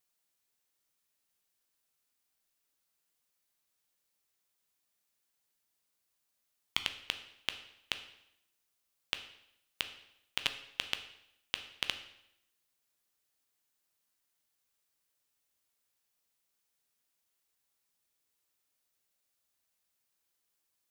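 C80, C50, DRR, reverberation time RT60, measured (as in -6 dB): 14.0 dB, 11.5 dB, 8.0 dB, 0.80 s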